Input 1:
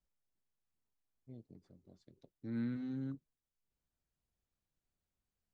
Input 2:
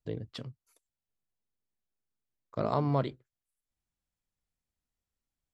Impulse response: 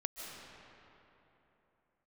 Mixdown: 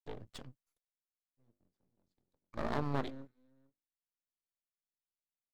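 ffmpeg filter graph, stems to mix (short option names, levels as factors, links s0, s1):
-filter_complex "[0:a]bandreject=f=50:t=h:w=6,bandreject=f=100:t=h:w=6,bandreject=f=150:t=h:w=6,bandreject=f=200:t=h:w=6,bandreject=f=250:t=h:w=6,bandreject=f=300:t=h:w=6,bandreject=f=350:t=h:w=6,adelay=100,volume=0.891,asplit=2[s0][s1];[s1]volume=0.0708[s2];[1:a]agate=range=0.0224:threshold=0.00141:ratio=3:detection=peak,volume=0.794,asplit=2[s3][s4];[s4]apad=whole_len=248359[s5];[s0][s5]sidechaingate=range=0.251:threshold=0.00141:ratio=16:detection=peak[s6];[s2]aecho=0:1:446:1[s7];[s6][s3][s7]amix=inputs=3:normalize=0,highpass=58,lowshelf=f=75:g=-11.5,aeval=exprs='max(val(0),0)':c=same"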